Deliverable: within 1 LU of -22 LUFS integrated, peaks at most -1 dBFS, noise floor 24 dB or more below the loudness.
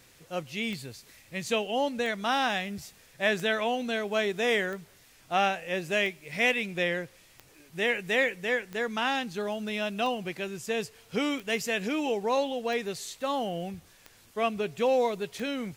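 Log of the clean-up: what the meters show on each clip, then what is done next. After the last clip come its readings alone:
clicks 12; loudness -29.5 LUFS; peak -11.5 dBFS; loudness target -22.0 LUFS
-> de-click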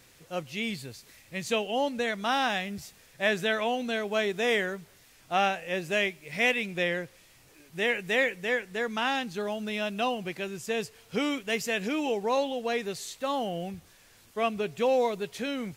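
clicks 0; loudness -29.5 LUFS; peak -11.5 dBFS; loudness target -22.0 LUFS
-> gain +7.5 dB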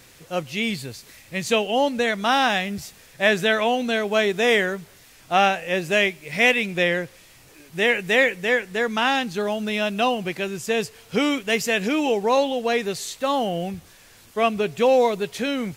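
loudness -22.0 LUFS; peak -4.0 dBFS; noise floor -50 dBFS

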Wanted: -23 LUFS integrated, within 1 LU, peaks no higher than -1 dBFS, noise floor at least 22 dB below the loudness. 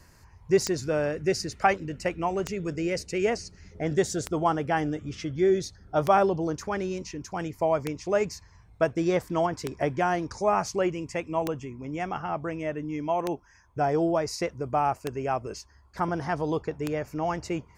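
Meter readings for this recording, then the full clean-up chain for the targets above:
clicks 10; loudness -28.0 LUFS; peak -7.5 dBFS; loudness target -23.0 LUFS
-> de-click; gain +5 dB

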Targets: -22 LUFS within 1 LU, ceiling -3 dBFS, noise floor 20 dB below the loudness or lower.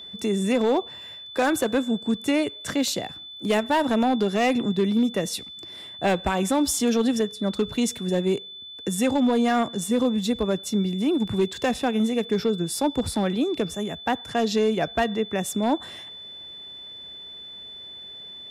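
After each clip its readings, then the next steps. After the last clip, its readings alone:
clipped 1.1%; flat tops at -15.0 dBFS; steady tone 3500 Hz; tone level -38 dBFS; loudness -24.5 LUFS; peak -15.0 dBFS; loudness target -22.0 LUFS
-> clip repair -15 dBFS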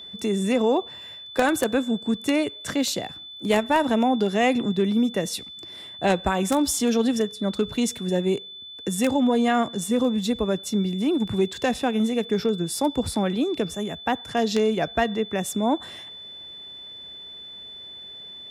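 clipped 0.0%; steady tone 3500 Hz; tone level -38 dBFS
-> notch 3500 Hz, Q 30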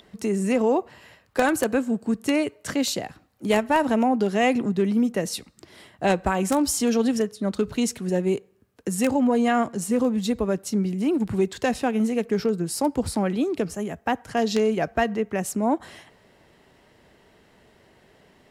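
steady tone none; loudness -24.0 LUFS; peak -6.0 dBFS; loudness target -22.0 LUFS
-> gain +2 dB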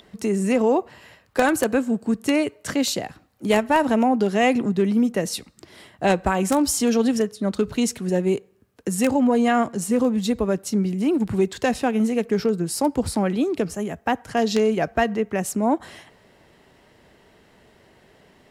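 loudness -22.0 LUFS; peak -4.0 dBFS; noise floor -57 dBFS

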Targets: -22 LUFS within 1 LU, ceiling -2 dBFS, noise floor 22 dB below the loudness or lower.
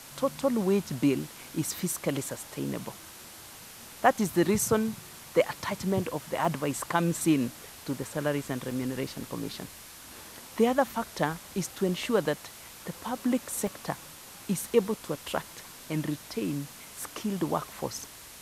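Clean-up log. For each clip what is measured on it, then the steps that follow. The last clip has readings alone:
dropouts 5; longest dropout 2.0 ms; noise floor -48 dBFS; noise floor target -52 dBFS; loudness -30.0 LUFS; peak -7.0 dBFS; loudness target -22.0 LUFS
-> interpolate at 6.45/8.03/8.71/13.67/15.37, 2 ms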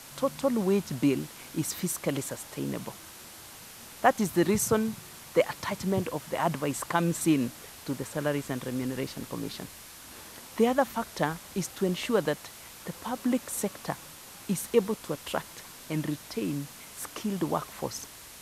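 dropouts 0; noise floor -48 dBFS; noise floor target -52 dBFS
-> denoiser 6 dB, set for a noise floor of -48 dBFS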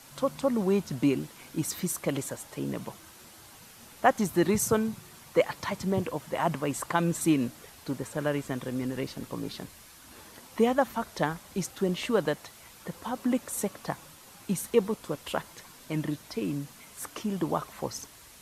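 noise floor -52 dBFS; noise floor target -53 dBFS
-> denoiser 6 dB, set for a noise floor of -52 dBFS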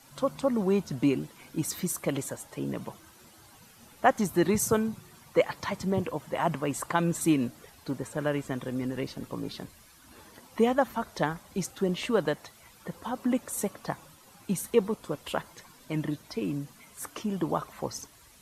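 noise floor -56 dBFS; loudness -30.5 LUFS; peak -7.0 dBFS; loudness target -22.0 LUFS
-> gain +8.5 dB; limiter -2 dBFS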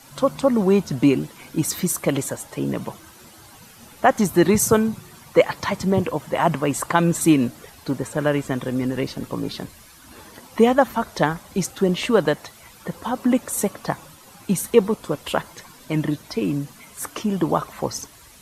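loudness -22.0 LUFS; peak -2.0 dBFS; noise floor -47 dBFS

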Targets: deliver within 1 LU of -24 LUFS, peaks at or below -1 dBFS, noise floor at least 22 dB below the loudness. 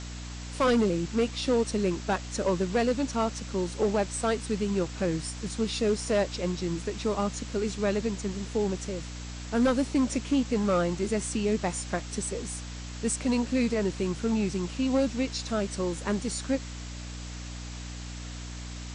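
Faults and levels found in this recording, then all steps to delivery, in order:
hum 60 Hz; harmonics up to 300 Hz; hum level -37 dBFS; noise floor -39 dBFS; noise floor target -51 dBFS; loudness -28.5 LUFS; peak -16.5 dBFS; loudness target -24.0 LUFS
-> de-hum 60 Hz, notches 5; noise print and reduce 12 dB; gain +4.5 dB

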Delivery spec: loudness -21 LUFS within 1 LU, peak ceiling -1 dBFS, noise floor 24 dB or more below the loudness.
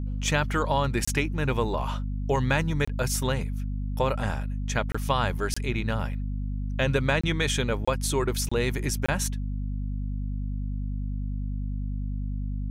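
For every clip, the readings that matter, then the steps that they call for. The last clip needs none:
dropouts 8; longest dropout 25 ms; hum 50 Hz; harmonics up to 250 Hz; hum level -27 dBFS; loudness -28.0 LUFS; peak -9.0 dBFS; loudness target -21.0 LUFS
-> interpolate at 1.05/2.85/4.92/5.54/7.21/7.85/8.49/9.06, 25 ms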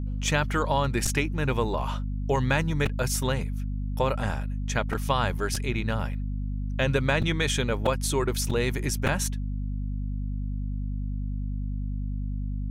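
dropouts 0; hum 50 Hz; harmonics up to 250 Hz; hum level -27 dBFS
-> de-hum 50 Hz, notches 5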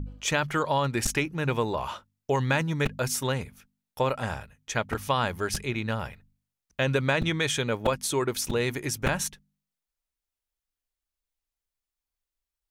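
hum none; loudness -28.0 LUFS; peak -8.5 dBFS; loudness target -21.0 LUFS
-> gain +7 dB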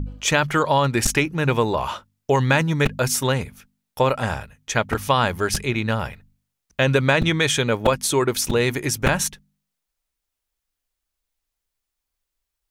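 loudness -21.0 LUFS; peak -1.5 dBFS; noise floor -82 dBFS

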